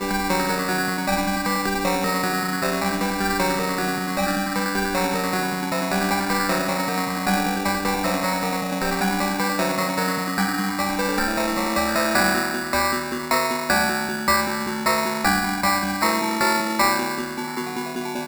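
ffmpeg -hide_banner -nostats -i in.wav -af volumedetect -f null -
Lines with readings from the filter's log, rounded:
mean_volume: -22.6 dB
max_volume: -11.9 dB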